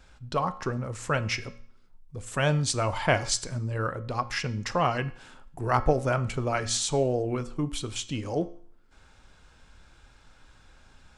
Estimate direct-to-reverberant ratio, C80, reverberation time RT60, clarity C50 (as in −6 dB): 11.0 dB, 19.5 dB, 0.55 s, 16.5 dB